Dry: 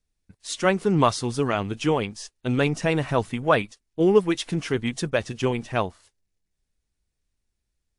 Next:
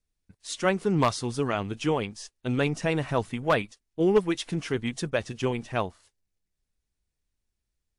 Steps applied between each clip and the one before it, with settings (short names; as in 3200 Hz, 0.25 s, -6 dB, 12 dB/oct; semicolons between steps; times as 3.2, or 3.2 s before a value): one-sided fold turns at -10.5 dBFS; gain -3.5 dB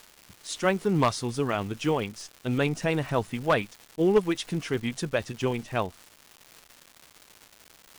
crackle 400/s -37 dBFS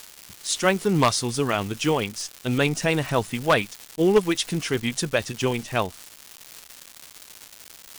high shelf 2900 Hz +8.5 dB; gain +3 dB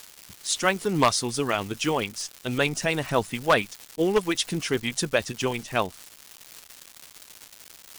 harmonic-percussive split harmonic -6 dB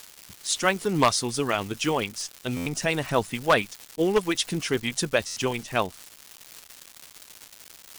stuck buffer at 2.56/5.26, samples 512, times 8